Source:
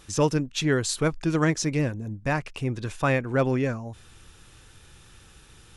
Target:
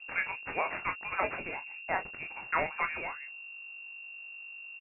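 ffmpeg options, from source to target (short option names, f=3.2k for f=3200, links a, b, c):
-filter_complex "[0:a]agate=range=-12dB:threshold=-38dB:ratio=16:detection=peak,aderivative,bandreject=f=50:t=h:w=6,bandreject=f=100:t=h:w=6,bandreject=f=150:t=h:w=6,bandreject=f=200:t=h:w=6,adynamicequalizer=threshold=0.00112:dfrequency=320:dqfactor=1.1:tfrequency=320:tqfactor=1.1:attack=5:release=100:ratio=0.375:range=2.5:mode=cutabove:tftype=bell,acontrast=43,aresample=16000,acrusher=bits=2:mode=log:mix=0:aa=0.000001,aresample=44100,asetrate=52920,aresample=44100,aeval=exprs='val(0)+0.00251*(sin(2*PI*50*n/s)+sin(2*PI*2*50*n/s)/2+sin(2*PI*3*50*n/s)/3+sin(2*PI*4*50*n/s)/4+sin(2*PI*5*50*n/s)/5)':c=same,asplit=2[a][b];[b]aecho=0:1:23|36:0.398|0.251[c];[a][c]amix=inputs=2:normalize=0,lowpass=f=2.4k:t=q:w=0.5098,lowpass=f=2.4k:t=q:w=0.6013,lowpass=f=2.4k:t=q:w=0.9,lowpass=f=2.4k:t=q:w=2.563,afreqshift=-2800,volume=6dB"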